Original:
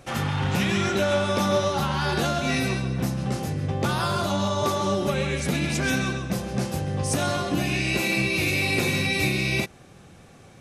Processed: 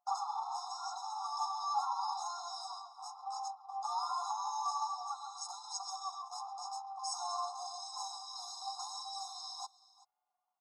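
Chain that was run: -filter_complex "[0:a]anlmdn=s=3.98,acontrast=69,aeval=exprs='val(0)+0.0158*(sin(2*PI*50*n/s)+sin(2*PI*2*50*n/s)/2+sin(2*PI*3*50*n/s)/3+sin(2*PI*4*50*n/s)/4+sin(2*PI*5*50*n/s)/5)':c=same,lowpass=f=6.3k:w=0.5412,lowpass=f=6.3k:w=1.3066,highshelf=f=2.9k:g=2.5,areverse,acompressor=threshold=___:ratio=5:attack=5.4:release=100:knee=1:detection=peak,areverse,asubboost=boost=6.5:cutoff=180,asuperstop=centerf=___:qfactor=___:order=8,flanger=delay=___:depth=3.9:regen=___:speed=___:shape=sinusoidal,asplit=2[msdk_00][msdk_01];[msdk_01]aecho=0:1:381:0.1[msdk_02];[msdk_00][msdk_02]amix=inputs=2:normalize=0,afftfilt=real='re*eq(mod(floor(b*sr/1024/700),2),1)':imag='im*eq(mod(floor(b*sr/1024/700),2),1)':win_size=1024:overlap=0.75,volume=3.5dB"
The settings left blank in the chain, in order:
-26dB, 2400, 0.62, 4.7, 7, 0.88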